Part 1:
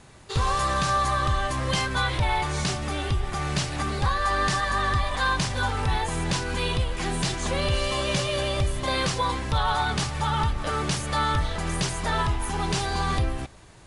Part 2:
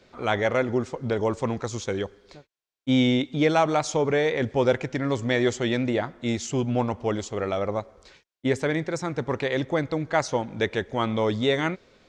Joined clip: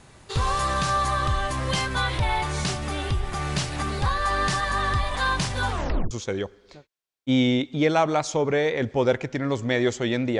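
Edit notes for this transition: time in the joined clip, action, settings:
part 1
5.71 tape stop 0.40 s
6.11 switch to part 2 from 1.71 s

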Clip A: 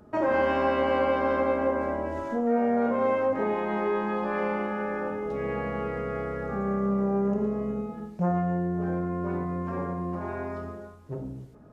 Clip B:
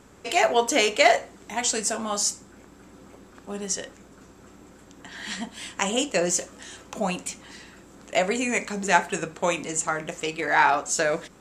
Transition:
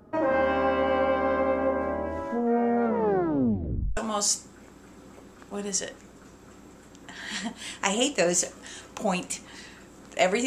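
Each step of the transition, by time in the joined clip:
clip A
2.84 tape stop 1.13 s
3.97 switch to clip B from 1.93 s

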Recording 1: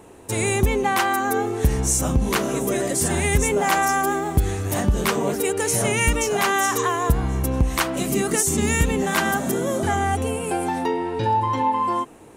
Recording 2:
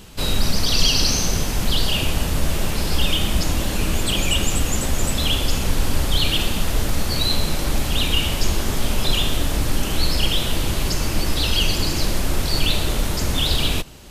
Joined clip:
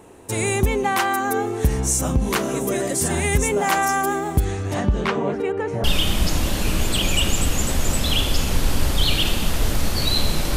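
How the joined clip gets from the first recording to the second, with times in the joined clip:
recording 1
4.44–5.84 LPF 7900 Hz -> 1200 Hz
5.84 switch to recording 2 from 2.98 s

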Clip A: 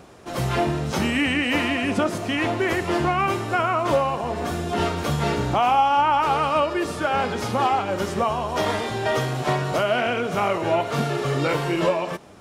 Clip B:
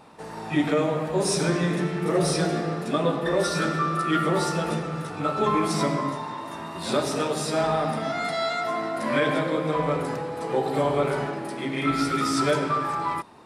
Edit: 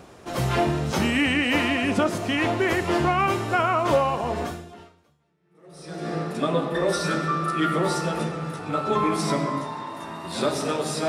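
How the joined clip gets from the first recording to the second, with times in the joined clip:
clip A
5.27 switch to clip B from 1.78 s, crossfade 1.72 s exponential

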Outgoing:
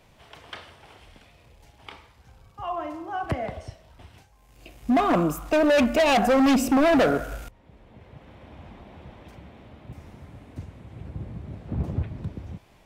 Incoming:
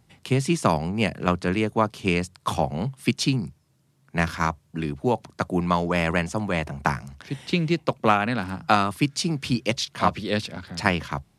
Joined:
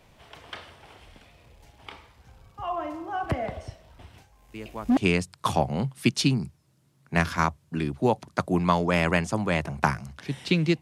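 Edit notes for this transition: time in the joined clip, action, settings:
outgoing
4.54 add incoming from 1.56 s 0.43 s -15.5 dB
4.97 switch to incoming from 1.99 s

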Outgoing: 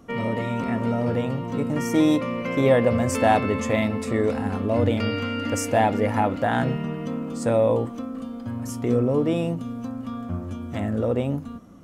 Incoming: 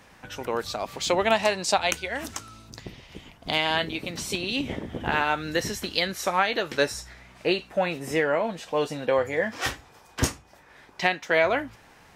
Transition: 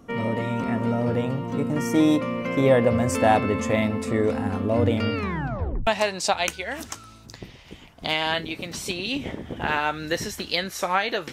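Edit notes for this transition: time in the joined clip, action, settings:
outgoing
5.14 tape stop 0.73 s
5.87 switch to incoming from 1.31 s

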